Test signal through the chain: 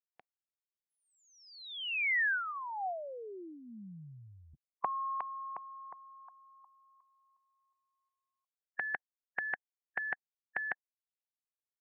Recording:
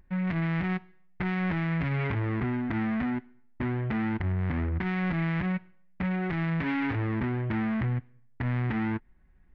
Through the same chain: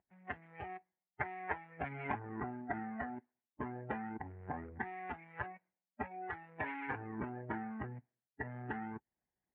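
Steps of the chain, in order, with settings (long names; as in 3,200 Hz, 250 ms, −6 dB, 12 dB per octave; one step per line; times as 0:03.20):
noise reduction from a noise print of the clip's start 18 dB
loudspeaker in its box 170–2,200 Hz, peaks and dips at 270 Hz −7 dB, 750 Hz +10 dB, 1,300 Hz −6 dB
harmonic and percussive parts rebalanced harmonic −17 dB
level +4.5 dB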